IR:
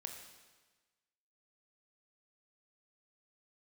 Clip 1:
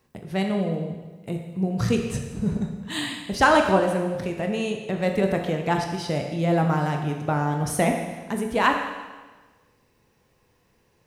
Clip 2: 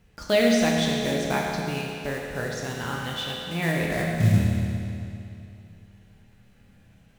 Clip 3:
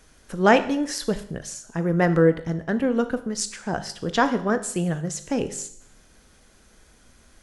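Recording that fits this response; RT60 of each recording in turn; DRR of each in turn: 1; 1.3, 2.7, 0.65 s; 3.0, -2.5, 10.5 dB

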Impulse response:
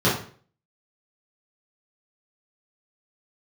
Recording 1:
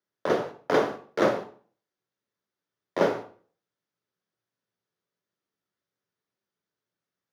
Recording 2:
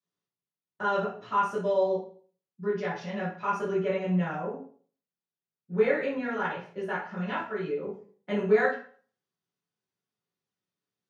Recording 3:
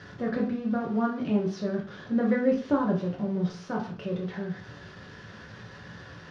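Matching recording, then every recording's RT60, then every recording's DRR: 2; 0.45, 0.45, 0.45 s; 5.5, -9.0, -2.0 dB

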